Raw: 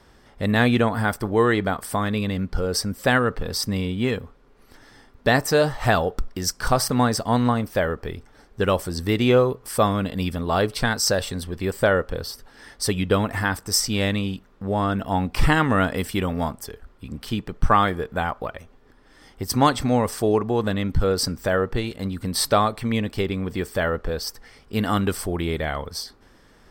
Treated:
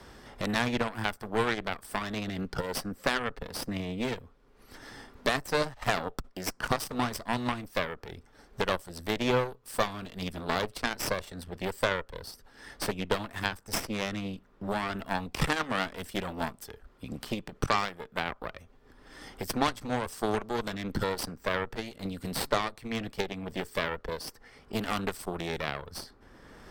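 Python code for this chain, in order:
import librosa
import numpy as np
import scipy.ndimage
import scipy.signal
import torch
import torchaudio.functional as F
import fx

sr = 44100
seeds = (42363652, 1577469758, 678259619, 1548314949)

y = fx.cheby_harmonics(x, sr, harmonics=(5, 6, 7), levels_db=(-25, -15, -17), full_scale_db=-3.0)
y = fx.band_squash(y, sr, depth_pct=70)
y = y * librosa.db_to_amplitude(-6.5)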